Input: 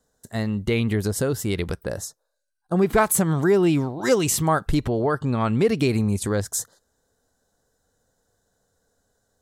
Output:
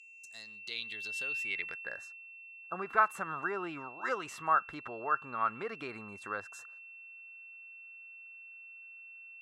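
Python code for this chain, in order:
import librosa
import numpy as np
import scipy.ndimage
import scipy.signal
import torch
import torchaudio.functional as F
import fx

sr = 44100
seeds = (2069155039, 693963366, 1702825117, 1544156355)

y = x + 10.0 ** (-33.0 / 20.0) * np.sin(2.0 * np.pi * 2700.0 * np.arange(len(x)) / sr)
y = fx.filter_sweep_bandpass(y, sr, from_hz=7300.0, to_hz=1300.0, start_s=0.05, end_s=2.25, q=3.6)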